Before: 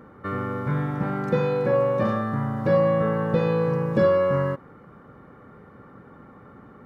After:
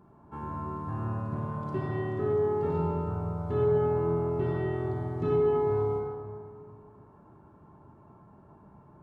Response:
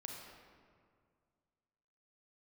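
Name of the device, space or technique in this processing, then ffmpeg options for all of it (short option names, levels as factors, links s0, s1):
slowed and reverbed: -filter_complex "[0:a]asetrate=33516,aresample=44100[s0];[1:a]atrim=start_sample=2205[s1];[s0][s1]afir=irnorm=-1:irlink=0,volume=0.562"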